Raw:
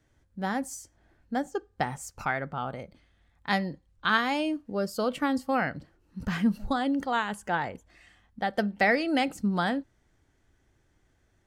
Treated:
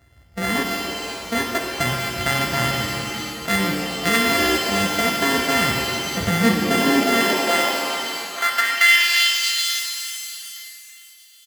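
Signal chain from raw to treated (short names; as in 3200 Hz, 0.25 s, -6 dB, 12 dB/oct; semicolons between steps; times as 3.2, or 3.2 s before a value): sample sorter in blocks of 64 samples; bell 1800 Hz +12 dB 0.28 oct; in parallel at -2.5 dB: negative-ratio compressor -32 dBFS, ratio -1; on the sum: high-pass sweep 65 Hz -> 3900 Hz, 5.89–9.46; feedback echo 0.876 s, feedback 28%, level -21 dB; shimmer reverb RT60 2.2 s, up +7 st, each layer -2 dB, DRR 2.5 dB; gain +2 dB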